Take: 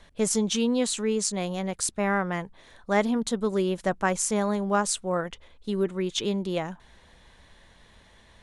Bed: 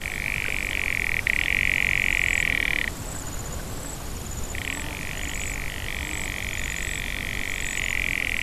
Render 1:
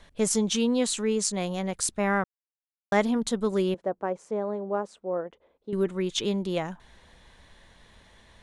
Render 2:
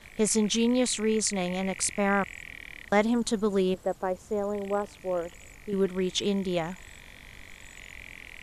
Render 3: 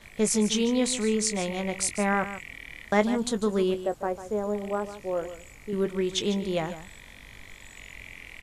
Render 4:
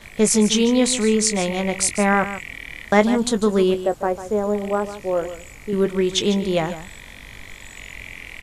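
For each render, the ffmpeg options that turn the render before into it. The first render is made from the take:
ffmpeg -i in.wav -filter_complex "[0:a]asettb=1/sr,asplit=3[link_01][link_02][link_03];[link_01]atrim=end=3.744[link_04];[link_02]atrim=start=3.74:end=5.73,asetpts=PTS-STARTPTS,afade=type=in:duration=0.004:curve=qsin,afade=type=out:start_time=1.986:duration=0.004:curve=qsin,bandpass=frequency=470:width_type=q:width=1.4[link_05];[link_03]atrim=start=5.726[link_06];[link_04][link_05]acrossfade=duration=0.004:curve1=hsin:curve2=qsin[link_07];[link_07][link_06]acrossfade=duration=0.004:curve1=qsin:curve2=hsin,asplit=3[link_08][link_09][link_10];[link_08]atrim=end=2.24,asetpts=PTS-STARTPTS,afade=type=out:start_time=2.236:duration=0.004:curve=hsin[link_11];[link_09]atrim=start=2.24:end=2.92,asetpts=PTS-STARTPTS,volume=0[link_12];[link_10]atrim=start=2.92,asetpts=PTS-STARTPTS,afade=type=in:duration=0.004:curve=hsin[link_13];[link_11][link_12][link_13]concat=n=3:v=0:a=1" out.wav
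ffmpeg -i in.wav -i bed.wav -filter_complex "[1:a]volume=-19.5dB[link_01];[0:a][link_01]amix=inputs=2:normalize=0" out.wav
ffmpeg -i in.wav -filter_complex "[0:a]asplit=2[link_01][link_02];[link_02]adelay=19,volume=-11.5dB[link_03];[link_01][link_03]amix=inputs=2:normalize=0,aecho=1:1:148:0.237" out.wav
ffmpeg -i in.wav -af "volume=7.5dB,alimiter=limit=-1dB:level=0:latency=1" out.wav

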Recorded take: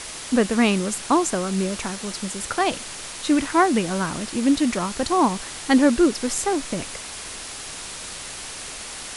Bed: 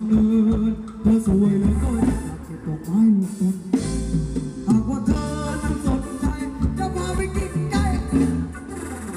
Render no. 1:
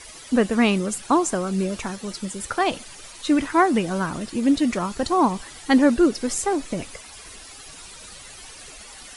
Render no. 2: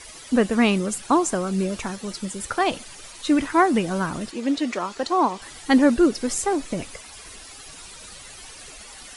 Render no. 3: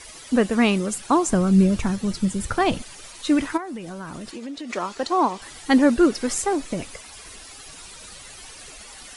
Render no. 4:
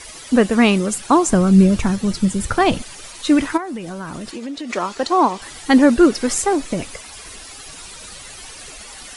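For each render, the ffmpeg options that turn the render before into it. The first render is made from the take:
ffmpeg -i in.wav -af "afftdn=noise_reduction=12:noise_floor=-35" out.wav
ffmpeg -i in.wav -filter_complex "[0:a]asettb=1/sr,asplit=3[link_01][link_02][link_03];[link_01]atrim=end=4.314[link_04];[link_02]atrim=start=4.31:end=5.42,asetpts=PTS-STARTPTS,afade=type=in:duration=0.004:curve=qsin,afade=type=out:start_time=1.106:duration=0.004:curve=qsin,acrossover=split=270 7700:gain=0.126 1 0.2[link_05][link_06][link_07];[link_05][link_06][link_07]amix=inputs=3:normalize=0[link_08];[link_03]atrim=start=5.416[link_09];[link_04][link_08]acrossfade=duration=0.004:curve1=hsin:curve2=qsin[link_10];[link_10][link_09]acrossfade=duration=0.004:curve1=qsin:curve2=hsin" out.wav
ffmpeg -i in.wav -filter_complex "[0:a]asettb=1/sr,asplit=3[link_01][link_02][link_03];[link_01]atrim=end=1.294[link_04];[link_02]atrim=start=1.29:end=2.82,asetpts=PTS-STARTPTS,afade=type=in:duration=0.004:curve=qsin,afade=type=out:start_time=1.526:duration=0.004:curve=qsin,bass=frequency=250:gain=13,treble=frequency=4000:gain=-1[link_05];[link_03]atrim=start=2.816[link_06];[link_04][link_05]acrossfade=duration=0.004:curve1=hsin:curve2=qsin[link_07];[link_07][link_06]acrossfade=duration=0.004:curve1=qsin:curve2=hsin,asplit=3[link_08][link_09][link_10];[link_08]afade=type=out:start_time=3.56:duration=0.02[link_11];[link_09]acompressor=threshold=-31dB:ratio=6:attack=3.2:release=140:knee=1:detection=peak,afade=type=in:start_time=3.56:duration=0.02,afade=type=out:start_time=4.69:duration=0.02[link_12];[link_10]afade=type=in:start_time=4.69:duration=0.02[link_13];[link_11][link_12][link_13]amix=inputs=3:normalize=0,asettb=1/sr,asplit=3[link_14][link_15][link_16];[link_14]atrim=end=5.994[link_17];[link_15]atrim=start=5.99:end=6.42,asetpts=PTS-STARTPTS,afade=type=in:duration=0.004:curve=qsin,afade=type=out:start_time=0.426:duration=0.004:curve=qsin,equalizer=frequency=1500:width_type=o:width=2:gain=4[link_18];[link_16]atrim=start=6.416[link_19];[link_17][link_18]acrossfade=duration=0.004:curve1=hsin:curve2=qsin[link_20];[link_20][link_19]acrossfade=duration=0.004:curve1=qsin:curve2=hsin" out.wav
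ffmpeg -i in.wav -af "volume=5dB,alimiter=limit=-2dB:level=0:latency=1" out.wav

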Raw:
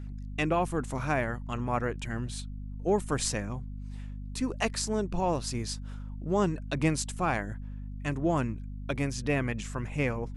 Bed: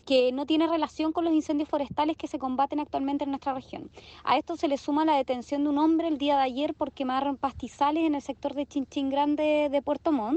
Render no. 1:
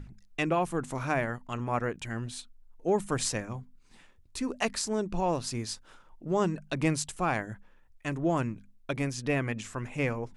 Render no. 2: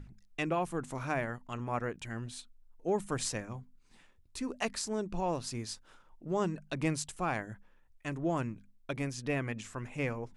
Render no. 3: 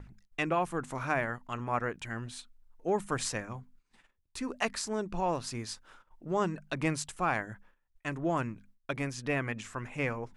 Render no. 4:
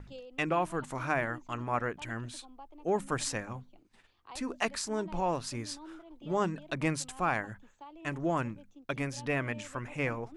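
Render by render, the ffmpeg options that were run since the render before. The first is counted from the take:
ffmpeg -i in.wav -af "bandreject=frequency=50:width_type=h:width=6,bandreject=frequency=100:width_type=h:width=6,bandreject=frequency=150:width_type=h:width=6,bandreject=frequency=200:width_type=h:width=6,bandreject=frequency=250:width_type=h:width=6" out.wav
ffmpeg -i in.wav -af "volume=-4.5dB" out.wav
ffmpeg -i in.wav -af "agate=range=-14dB:threshold=-58dB:ratio=16:detection=peak,equalizer=frequency=1400:width=0.69:gain=5.5" out.wav
ffmpeg -i in.wav -i bed.wav -filter_complex "[1:a]volume=-25dB[link_01];[0:a][link_01]amix=inputs=2:normalize=0" out.wav

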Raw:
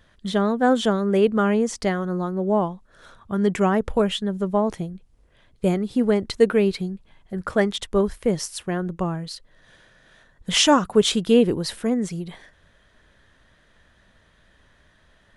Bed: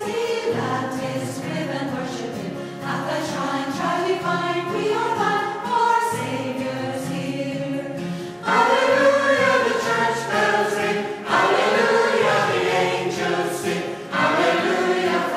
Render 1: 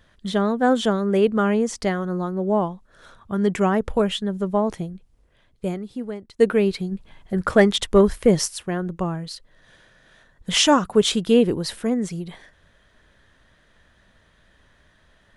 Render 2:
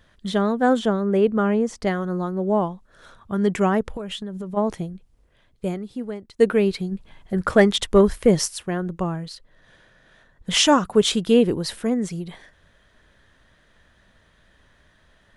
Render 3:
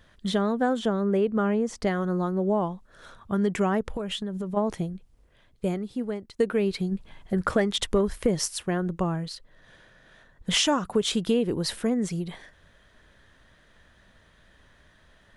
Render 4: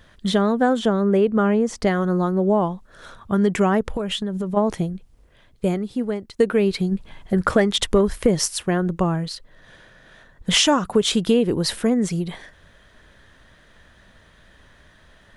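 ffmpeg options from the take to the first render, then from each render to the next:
ffmpeg -i in.wav -filter_complex "[0:a]asplit=3[link_01][link_02][link_03];[link_01]afade=type=out:start_time=6.91:duration=0.02[link_04];[link_02]acontrast=53,afade=type=in:start_time=6.91:duration=0.02,afade=type=out:start_time=8.47:duration=0.02[link_05];[link_03]afade=type=in:start_time=8.47:duration=0.02[link_06];[link_04][link_05][link_06]amix=inputs=3:normalize=0,asplit=2[link_07][link_08];[link_07]atrim=end=6.39,asetpts=PTS-STARTPTS,afade=type=out:start_time=4.92:duration=1.47:silence=0.0841395[link_09];[link_08]atrim=start=6.39,asetpts=PTS-STARTPTS,afade=type=in:duration=0.004:curve=hsin:silence=0.0841395[link_10];[link_09][link_10]concat=n=2:v=0:a=1" out.wav
ffmpeg -i in.wav -filter_complex "[0:a]asettb=1/sr,asplit=3[link_01][link_02][link_03];[link_01]atrim=end=0.794[link_04];[link_02]atrim=start=0.79:end=1.87,asetpts=PTS-STARTPTS,afade=type=in:duration=0.004:curve=qsin,afade=type=out:start_time=1.076:duration=0.004:curve=qsin,highshelf=frequency=2200:gain=-8[link_05];[link_03]atrim=start=1.866[link_06];[link_04][link_05]acrossfade=duration=0.004:curve1=hsin:curve2=qsin[link_07];[link_07][link_06]acrossfade=duration=0.004:curve1=qsin:curve2=hsin,asplit=3[link_08][link_09][link_10];[link_08]afade=type=out:start_time=3.82:duration=0.02[link_11];[link_09]acompressor=threshold=-27dB:ratio=12:attack=3.2:release=140:knee=1:detection=peak,afade=type=in:start_time=3.82:duration=0.02,afade=type=out:start_time=4.56:duration=0.02[link_12];[link_10]afade=type=in:start_time=4.56:duration=0.02[link_13];[link_11][link_12][link_13]amix=inputs=3:normalize=0,asettb=1/sr,asplit=3[link_14][link_15][link_16];[link_14]atrim=end=9.284[link_17];[link_15]atrim=start=9.28:end=10.51,asetpts=PTS-STARTPTS,afade=type=in:duration=0.004:curve=qsin,afade=type=out:start_time=1.226:duration=0.004:curve=qsin,highshelf=frequency=3800:gain=-5.5[link_18];[link_16]atrim=start=10.506[link_19];[link_17][link_18]acrossfade=duration=0.004:curve1=hsin:curve2=qsin[link_20];[link_20][link_19]acrossfade=duration=0.004:curve1=qsin:curve2=hsin" out.wav
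ffmpeg -i in.wav -af "acompressor=threshold=-21dB:ratio=4" out.wav
ffmpeg -i in.wav -af "volume=6dB" out.wav

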